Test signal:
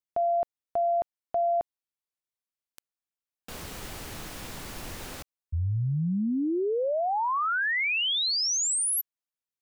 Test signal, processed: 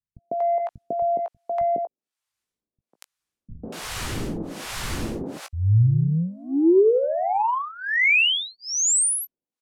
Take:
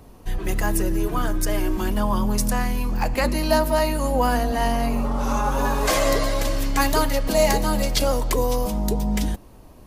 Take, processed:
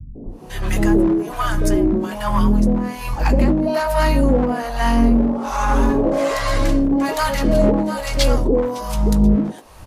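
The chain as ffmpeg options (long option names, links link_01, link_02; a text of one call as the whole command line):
ffmpeg -i in.wav -filter_complex "[0:a]lowpass=11000,equalizer=frequency=240:width_type=o:width=2.7:gain=7.5,asplit=2[link_01][link_02];[link_02]adelay=18,volume=-11dB[link_03];[link_01][link_03]amix=inputs=2:normalize=0,asplit=2[link_04][link_05];[link_05]acompressor=threshold=-27dB:ratio=5:attack=10:release=60:knee=6,volume=2.5dB[link_06];[link_04][link_06]amix=inputs=2:normalize=0,asoftclip=type=tanh:threshold=-7dB,acrossover=split=670[link_07][link_08];[link_07]aeval=exprs='val(0)*(1-1/2+1/2*cos(2*PI*1.2*n/s))':channel_layout=same[link_09];[link_08]aeval=exprs='val(0)*(1-1/2-1/2*cos(2*PI*1.2*n/s))':channel_layout=same[link_10];[link_09][link_10]amix=inputs=2:normalize=0,volume=12.5dB,asoftclip=hard,volume=-12.5dB,acrossover=split=150|680[link_11][link_12][link_13];[link_12]adelay=150[link_14];[link_13]adelay=240[link_15];[link_11][link_14][link_15]amix=inputs=3:normalize=0,adynamicequalizer=threshold=0.01:dfrequency=2900:dqfactor=0.7:tfrequency=2900:tqfactor=0.7:attack=5:release=100:ratio=0.375:range=2.5:mode=cutabove:tftype=highshelf,volume=4.5dB" out.wav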